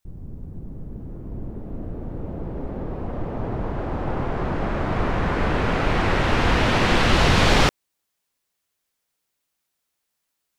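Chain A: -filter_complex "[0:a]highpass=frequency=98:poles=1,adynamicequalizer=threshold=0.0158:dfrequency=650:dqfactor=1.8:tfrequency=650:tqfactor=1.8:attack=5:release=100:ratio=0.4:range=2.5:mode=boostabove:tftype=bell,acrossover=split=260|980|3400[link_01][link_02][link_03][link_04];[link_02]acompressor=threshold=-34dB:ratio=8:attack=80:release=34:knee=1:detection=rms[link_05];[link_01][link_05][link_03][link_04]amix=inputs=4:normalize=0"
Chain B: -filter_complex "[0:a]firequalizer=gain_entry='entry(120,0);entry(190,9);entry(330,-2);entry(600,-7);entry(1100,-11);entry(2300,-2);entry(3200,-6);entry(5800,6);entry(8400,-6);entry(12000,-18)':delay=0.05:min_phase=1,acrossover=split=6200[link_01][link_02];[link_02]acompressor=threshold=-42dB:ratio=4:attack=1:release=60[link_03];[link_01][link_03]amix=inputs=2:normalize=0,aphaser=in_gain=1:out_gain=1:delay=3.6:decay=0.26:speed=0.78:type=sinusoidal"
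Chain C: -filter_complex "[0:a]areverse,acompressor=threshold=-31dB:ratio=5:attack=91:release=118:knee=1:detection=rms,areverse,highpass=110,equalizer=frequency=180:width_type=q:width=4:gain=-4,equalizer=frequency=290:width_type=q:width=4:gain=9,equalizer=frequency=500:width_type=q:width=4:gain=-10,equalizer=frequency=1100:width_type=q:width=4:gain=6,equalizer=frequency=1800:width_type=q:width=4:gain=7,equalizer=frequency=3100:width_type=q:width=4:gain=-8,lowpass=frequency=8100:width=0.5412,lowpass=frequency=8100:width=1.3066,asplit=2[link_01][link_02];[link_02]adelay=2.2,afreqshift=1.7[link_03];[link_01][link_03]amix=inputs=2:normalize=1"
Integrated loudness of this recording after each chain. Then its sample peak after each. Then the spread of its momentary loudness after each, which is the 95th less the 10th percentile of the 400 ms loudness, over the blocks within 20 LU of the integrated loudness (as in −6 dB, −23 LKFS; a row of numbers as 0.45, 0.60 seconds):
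−24.0, −22.5, −34.5 LKFS; −7.0, −3.0, −12.5 dBFS; 21, 16, 10 LU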